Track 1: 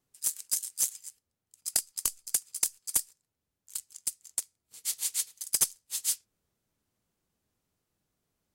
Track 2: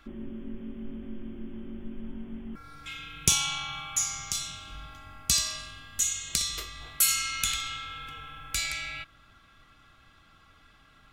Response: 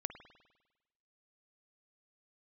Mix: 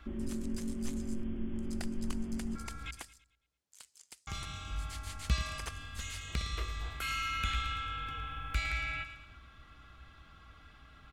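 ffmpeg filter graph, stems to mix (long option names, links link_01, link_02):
-filter_complex "[0:a]lowpass=5000,aemphasis=mode=production:type=bsi,adelay=50,volume=-2.5dB[link_01];[1:a]highshelf=frequency=5500:gain=-7.5,volume=0.5dB,asplit=3[link_02][link_03][link_04];[link_02]atrim=end=2.91,asetpts=PTS-STARTPTS,afade=type=out:start_time=2.906:duration=0.004:curve=hsin[link_05];[link_03]atrim=start=2.91:end=4.27,asetpts=PTS-STARTPTS,volume=0[link_06];[link_04]atrim=start=4.27,asetpts=PTS-STARTPTS,afade=type=in:duration=0.004:curve=hsin[link_07];[link_05][link_06][link_07]concat=n=3:v=0:a=1,asplit=2[link_08][link_09];[link_09]volume=-12.5dB,aecho=0:1:111|222|333|444|555|666:1|0.42|0.176|0.0741|0.0311|0.0131[link_10];[link_01][link_08][link_10]amix=inputs=3:normalize=0,acrossover=split=2800[link_11][link_12];[link_12]acompressor=threshold=-50dB:ratio=4:attack=1:release=60[link_13];[link_11][link_13]amix=inputs=2:normalize=0,equalizer=frequency=61:width_type=o:width=0.64:gain=13"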